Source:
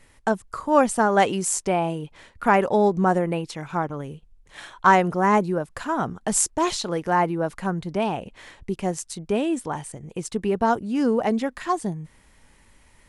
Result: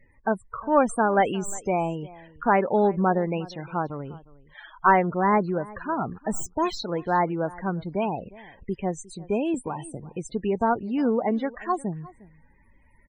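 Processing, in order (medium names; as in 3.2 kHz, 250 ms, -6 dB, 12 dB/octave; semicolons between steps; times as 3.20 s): tracing distortion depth 0.15 ms; loudest bins only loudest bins 32; echo from a far wall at 61 m, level -21 dB; 9.54–10.00 s: three bands compressed up and down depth 100%; trim -2 dB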